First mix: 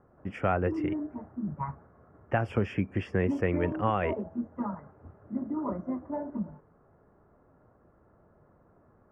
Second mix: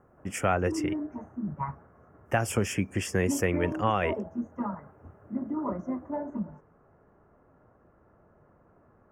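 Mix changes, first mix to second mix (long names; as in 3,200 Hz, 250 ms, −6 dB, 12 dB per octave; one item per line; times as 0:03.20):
speech: remove low-pass filter 9,600 Hz 12 dB per octave
master: remove high-frequency loss of the air 400 metres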